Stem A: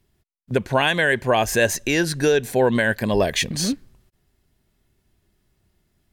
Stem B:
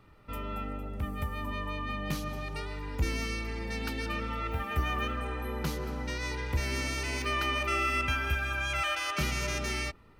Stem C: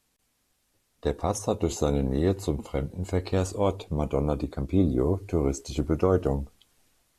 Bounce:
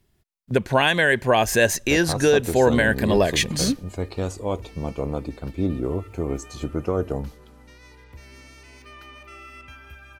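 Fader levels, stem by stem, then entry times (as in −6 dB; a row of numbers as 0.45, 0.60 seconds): +0.5, −14.0, −1.5 decibels; 0.00, 1.60, 0.85 seconds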